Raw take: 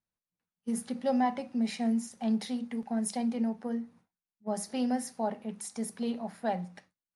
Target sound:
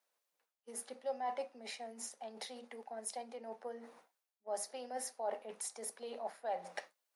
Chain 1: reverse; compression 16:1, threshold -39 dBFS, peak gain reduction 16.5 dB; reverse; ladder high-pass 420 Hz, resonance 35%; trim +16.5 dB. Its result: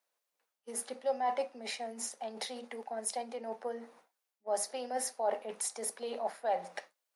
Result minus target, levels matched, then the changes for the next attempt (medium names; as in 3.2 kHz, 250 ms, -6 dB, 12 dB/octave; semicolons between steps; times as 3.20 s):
compression: peak gain reduction -6.5 dB
change: compression 16:1, threshold -46 dBFS, peak gain reduction 23 dB